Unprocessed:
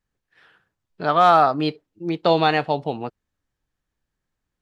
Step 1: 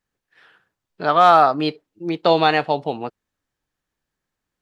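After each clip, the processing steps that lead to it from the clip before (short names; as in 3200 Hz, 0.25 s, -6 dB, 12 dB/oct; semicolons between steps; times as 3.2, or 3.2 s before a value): low shelf 140 Hz -9.5 dB; gain +2.5 dB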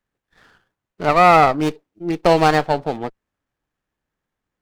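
running maximum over 9 samples; gain +1.5 dB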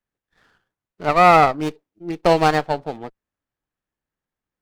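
upward expander 1.5:1, over -23 dBFS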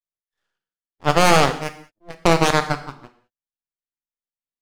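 added harmonics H 3 -38 dB, 4 -11 dB, 6 -8 dB, 7 -16 dB, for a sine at -1 dBFS; half-wave rectifier; non-linear reverb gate 0.23 s falling, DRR 8 dB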